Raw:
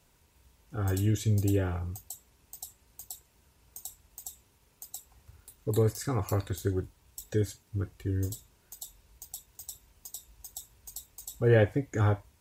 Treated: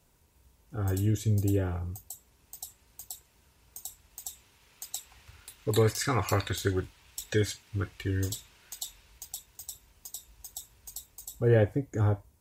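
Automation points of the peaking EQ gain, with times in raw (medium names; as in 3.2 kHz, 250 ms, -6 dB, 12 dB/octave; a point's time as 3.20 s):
peaking EQ 2.6 kHz 2.7 oct
1.99 s -3.5 dB
2.62 s +3 dB
3.87 s +3 dB
4.92 s +13.5 dB
8.79 s +13.5 dB
9.66 s +3 dB
10.91 s +3 dB
11.87 s -8.5 dB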